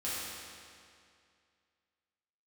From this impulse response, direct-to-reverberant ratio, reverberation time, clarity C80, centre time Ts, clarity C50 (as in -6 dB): -10.5 dB, 2.3 s, -1.5 dB, 156 ms, -4.0 dB